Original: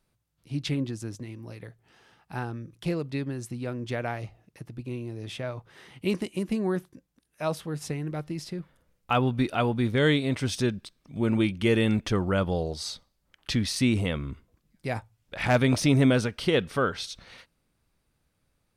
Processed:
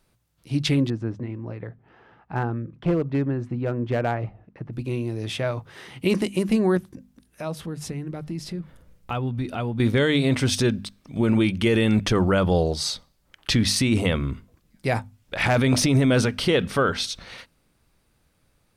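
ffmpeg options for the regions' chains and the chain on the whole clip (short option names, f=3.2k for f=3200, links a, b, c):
-filter_complex "[0:a]asettb=1/sr,asplit=3[a][b][c];[a]atrim=end=0.904[d];[b]atrim=start=0.9:end=4.73,asetpts=PTS-STARTPTS,afade=t=in:d=0.004:c=qsin,afade=t=out:st=3.826:d=0.004:c=qsin,lowpass=1.6k,asoftclip=type=hard:threshold=-24.5dB[e];[c]atrim=start=4.726[f];[d][e]acrossfade=d=0.004:c1=hsin:c2=qsin[g];[g][f]acrossfade=d=0.004:c1=qsin:c2=hsin,asettb=1/sr,asplit=3[h][i][j];[h]atrim=end=6.774[k];[i]atrim=start=6.77:end=9.8,asetpts=PTS-STARTPTS,afade=t=in:d=0.004:c=qsin,afade=t=out:st=3.026:d=0.004:c=qsin,lowshelf=f=270:g=9.5,acompressor=threshold=-43dB:ratio=2:attack=3.2:release=140:knee=1:detection=peak,bandreject=f=50:t=h:w=6,bandreject=f=100:t=h:w=6,bandreject=f=150:t=h:w=6[l];[j]atrim=start=9.796[m];[k][l]acrossfade=d=0.004:c1=hsin:c2=qsin[n];[n][m]acrossfade=d=0.004:c1=qsin:c2=hsin,bandreject=f=50:t=h:w=6,bandreject=f=100:t=h:w=6,bandreject=f=150:t=h:w=6,bandreject=f=200:t=h:w=6,bandreject=f=250:t=h:w=6,alimiter=limit=-19dB:level=0:latency=1:release=24,volume=8dB"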